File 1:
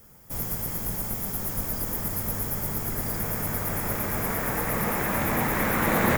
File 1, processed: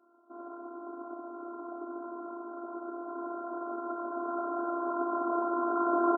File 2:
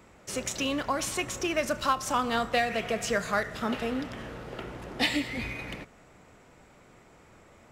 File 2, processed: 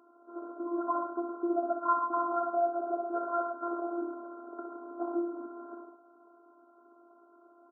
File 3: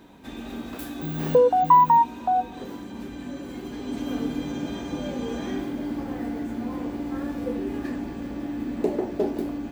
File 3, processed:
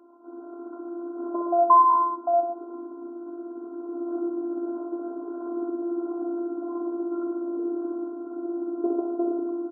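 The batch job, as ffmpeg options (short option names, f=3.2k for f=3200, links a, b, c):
-af "aecho=1:1:62|117|133:0.562|0.316|0.266,afftfilt=real='hypot(re,im)*cos(PI*b)':imag='0':win_size=512:overlap=0.75,afftfilt=real='re*between(b*sr/4096,230,1600)':imag='im*between(b*sr/4096,230,1600)':win_size=4096:overlap=0.75"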